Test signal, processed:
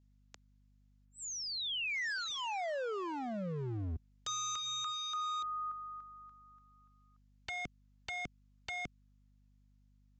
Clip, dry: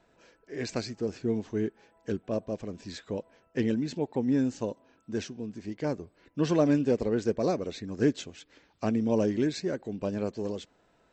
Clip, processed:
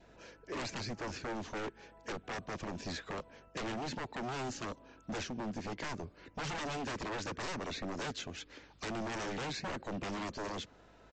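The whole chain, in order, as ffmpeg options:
-filter_complex "[0:a]acrossover=split=97|310|1200|2400[a][b][c][d][e];[a]acompressor=threshold=-48dB:ratio=4[f];[b]acompressor=threshold=-39dB:ratio=4[g];[c]acompressor=threshold=-41dB:ratio=4[h];[d]acompressor=threshold=-49dB:ratio=4[i];[e]acompressor=threshold=-49dB:ratio=4[j];[f][g][h][i][j]amix=inputs=5:normalize=0,adynamicequalizer=threshold=0.00224:dfrequency=1200:dqfactor=3.2:tfrequency=1200:tqfactor=3.2:attack=5:release=100:ratio=0.375:range=2.5:mode=boostabove:tftype=bell,aeval=exprs='val(0)+0.000282*(sin(2*PI*50*n/s)+sin(2*PI*2*50*n/s)/2+sin(2*PI*3*50*n/s)/3+sin(2*PI*4*50*n/s)/4+sin(2*PI*5*50*n/s)/5)':c=same,aresample=16000,aeval=exprs='0.0119*(abs(mod(val(0)/0.0119+3,4)-2)-1)':c=same,aresample=44100,volume=5dB"

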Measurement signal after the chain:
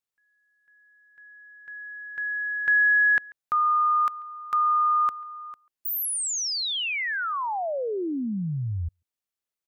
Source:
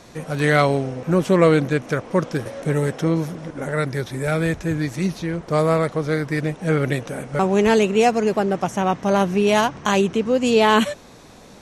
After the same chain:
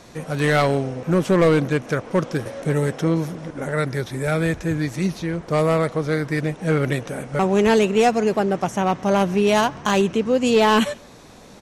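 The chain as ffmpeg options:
-filter_complex "[0:a]asplit=2[a][b];[b]adelay=140,highpass=300,lowpass=3.4k,asoftclip=type=hard:threshold=-12.5dB,volume=-24dB[c];[a][c]amix=inputs=2:normalize=0,aeval=exprs='clip(val(0),-1,0.282)':c=same"

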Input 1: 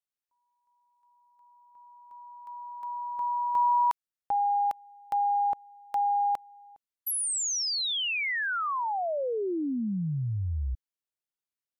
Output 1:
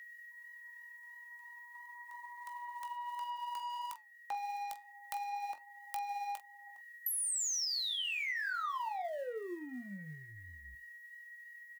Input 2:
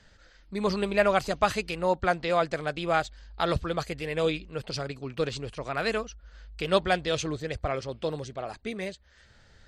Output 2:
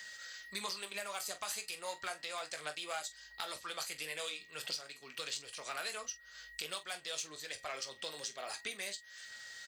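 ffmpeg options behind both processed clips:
-filter_complex "[0:a]acrossover=split=650|1300|5900[a][b][c][d];[a]acompressor=threshold=-32dB:ratio=4[e];[b]acompressor=threshold=-29dB:ratio=4[f];[c]acompressor=threshold=-39dB:ratio=4[g];[d]acompressor=threshold=-42dB:ratio=4[h];[e][f][g][h]amix=inputs=4:normalize=0,aeval=exprs='val(0)+0.00158*sin(2*PI*1900*n/s)':c=same,asplit=2[i][j];[j]asoftclip=type=tanh:threshold=-30.5dB,volume=-5dB[k];[i][k]amix=inputs=2:normalize=0,aphaser=in_gain=1:out_gain=1:delay=5:decay=0.24:speed=1.5:type=sinusoidal,aderivative,acompressor=threshold=-47dB:ratio=6:attack=4.8:release=678:knee=6:detection=rms,asplit=2[l][m];[m]aecho=0:1:20|45:0.316|0.2[n];[l][n]amix=inputs=2:normalize=0,flanger=delay=3.2:depth=7.2:regen=-84:speed=0.32:shape=sinusoidal,volume=17dB"

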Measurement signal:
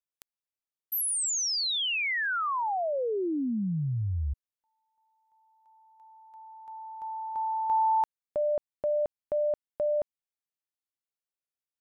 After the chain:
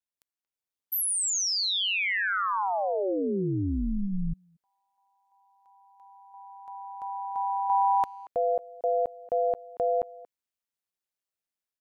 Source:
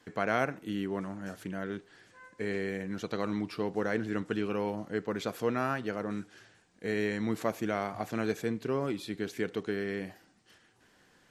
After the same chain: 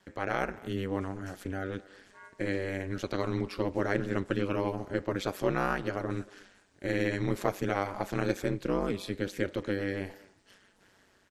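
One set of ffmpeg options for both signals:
-filter_complex "[0:a]aeval=exprs='val(0)*sin(2*PI*96*n/s)':c=same,dynaudnorm=f=390:g=3:m=4.5dB,asplit=2[a][b];[b]adelay=230,highpass=300,lowpass=3.4k,asoftclip=type=hard:threshold=-17.5dB,volume=-20dB[c];[a][c]amix=inputs=2:normalize=0"

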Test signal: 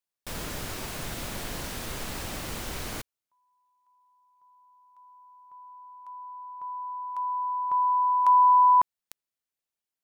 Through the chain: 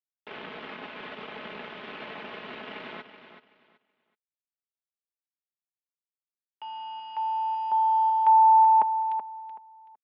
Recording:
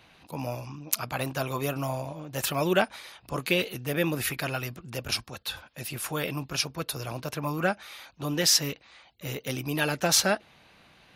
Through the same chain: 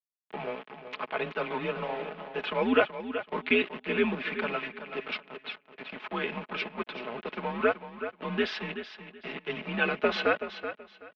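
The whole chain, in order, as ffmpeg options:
-filter_complex "[0:a]aeval=exprs='val(0)*gte(abs(val(0)),0.0211)':c=same,highpass=f=330:t=q:w=0.5412,highpass=f=330:t=q:w=1.307,lowpass=f=3.3k:t=q:w=0.5176,lowpass=f=3.3k:t=q:w=0.7071,lowpass=f=3.3k:t=q:w=1.932,afreqshift=-110,aecho=1:1:4.7:0.5,asplit=2[a][b];[b]aecho=0:1:378|756|1134:0.299|0.0687|0.0158[c];[a][c]amix=inputs=2:normalize=0"

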